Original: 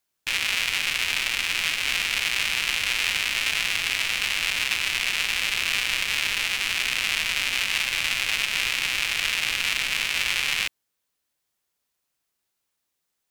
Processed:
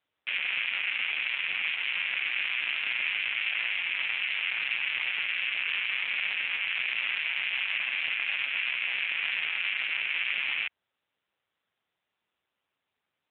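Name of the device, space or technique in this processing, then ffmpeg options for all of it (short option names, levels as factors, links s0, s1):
telephone: -af "highpass=350,lowpass=3300,asoftclip=type=tanh:threshold=0.158" -ar 8000 -c:a libopencore_amrnb -b:a 7950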